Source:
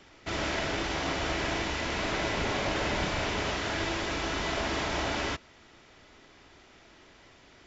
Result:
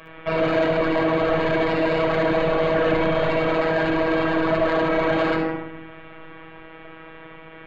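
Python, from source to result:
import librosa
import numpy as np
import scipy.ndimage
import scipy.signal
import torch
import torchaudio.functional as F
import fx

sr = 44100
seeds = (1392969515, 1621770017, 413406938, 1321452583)

p1 = np.repeat(scipy.signal.resample_poly(x, 1, 8), 8)[:len(x)]
p2 = scipy.signal.sosfilt(scipy.signal.cheby1(4, 1.0, 2900.0, 'lowpass', fs=sr, output='sos'), p1)
p3 = fx.room_shoebox(p2, sr, seeds[0], volume_m3=3700.0, walls='furnished', distance_m=5.6)
p4 = fx.rider(p3, sr, range_db=4, speed_s=0.5)
p5 = p3 + (p4 * librosa.db_to_amplitude(-2.0))
p6 = fx.dynamic_eq(p5, sr, hz=540.0, q=0.82, threshold_db=-37.0, ratio=4.0, max_db=4)
p7 = fx.robotise(p6, sr, hz=161.0)
p8 = 10.0 ** (-17.0 / 20.0) * np.tanh(p7 / 10.0 ** (-17.0 / 20.0))
p9 = fx.low_shelf(p8, sr, hz=240.0, db=-7.0)
p10 = p9 + fx.echo_multitap(p9, sr, ms=(60, 72), db=(-13.0, -10.5), dry=0)
y = p10 * librosa.db_to_amplitude(8.0)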